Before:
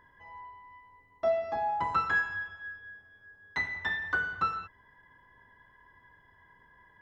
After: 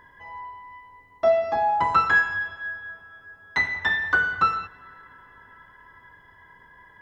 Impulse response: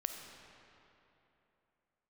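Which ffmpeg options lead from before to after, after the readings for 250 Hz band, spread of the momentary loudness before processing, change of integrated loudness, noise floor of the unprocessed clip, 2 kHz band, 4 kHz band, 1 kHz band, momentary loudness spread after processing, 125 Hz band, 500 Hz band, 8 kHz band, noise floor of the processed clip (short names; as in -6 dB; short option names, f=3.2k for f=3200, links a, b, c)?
+7.0 dB, 20 LU, +8.5 dB, -63 dBFS, +9.0 dB, +9.0 dB, +8.5 dB, 19 LU, +6.5 dB, +8.5 dB, n/a, -54 dBFS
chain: -filter_complex "[0:a]lowshelf=f=390:g=-3,asplit=2[a][b];[1:a]atrim=start_sample=2205,asetrate=27783,aresample=44100[c];[b][c]afir=irnorm=-1:irlink=0,volume=-19dB[d];[a][d]amix=inputs=2:normalize=0,volume=8dB"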